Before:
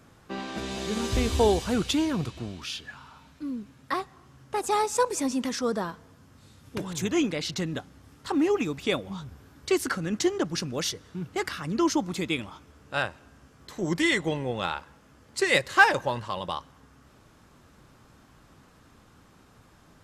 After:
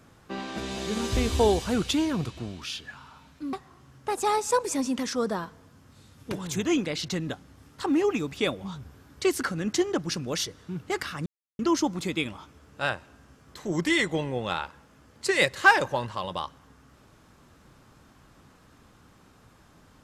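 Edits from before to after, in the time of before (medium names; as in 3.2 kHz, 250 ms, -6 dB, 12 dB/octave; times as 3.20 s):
3.53–3.99 s: delete
11.72 s: insert silence 0.33 s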